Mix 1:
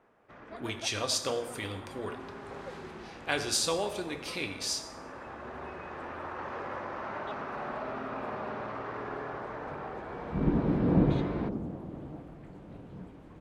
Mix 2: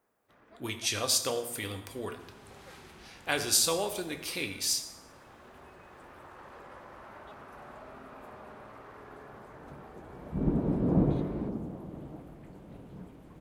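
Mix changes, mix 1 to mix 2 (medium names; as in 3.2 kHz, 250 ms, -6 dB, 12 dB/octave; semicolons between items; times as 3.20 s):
first sound -11.5 dB; second sound: send -10.5 dB; master: remove distance through air 58 m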